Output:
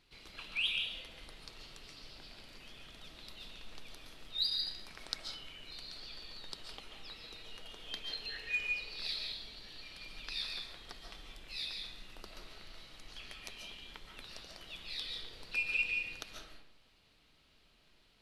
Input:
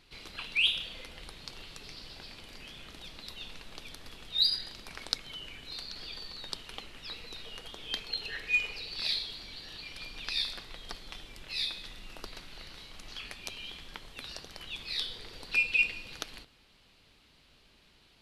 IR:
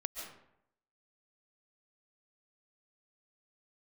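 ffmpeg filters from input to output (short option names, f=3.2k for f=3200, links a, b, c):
-filter_complex "[1:a]atrim=start_sample=2205[a];[0:a][a]afir=irnorm=-1:irlink=0,volume=-5.5dB"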